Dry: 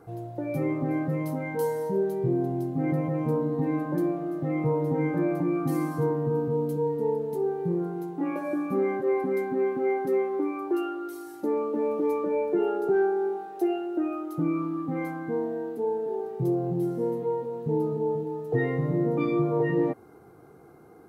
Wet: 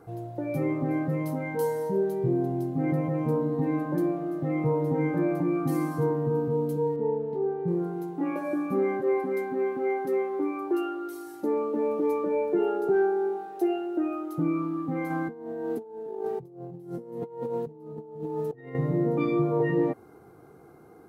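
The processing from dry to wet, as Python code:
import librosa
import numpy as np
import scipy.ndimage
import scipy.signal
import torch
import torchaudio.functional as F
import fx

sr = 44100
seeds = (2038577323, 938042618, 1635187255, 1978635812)

y = fx.air_absorb(x, sr, metres=330.0, at=(6.96, 7.68))
y = fx.low_shelf(y, sr, hz=220.0, db=-7.5, at=(9.2, 10.41))
y = fx.over_compress(y, sr, threshold_db=-34.0, ratio=-0.5, at=(15.1, 18.75))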